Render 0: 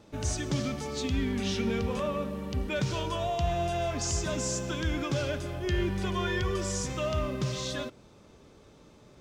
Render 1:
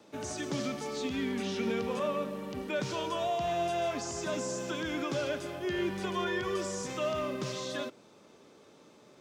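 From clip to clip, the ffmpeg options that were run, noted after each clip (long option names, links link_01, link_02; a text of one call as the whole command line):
ffmpeg -i in.wav -filter_complex "[0:a]acrossover=split=290|640|1600[link_01][link_02][link_03][link_04];[link_04]alimiter=level_in=10.5dB:limit=-24dB:level=0:latency=1:release=29,volume=-10.5dB[link_05];[link_01][link_02][link_03][link_05]amix=inputs=4:normalize=0,highpass=230" out.wav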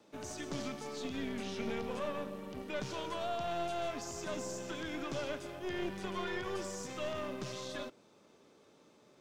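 ffmpeg -i in.wav -af "aeval=exprs='(tanh(22.4*val(0)+0.7)-tanh(0.7))/22.4':channel_layout=same,volume=-2dB" out.wav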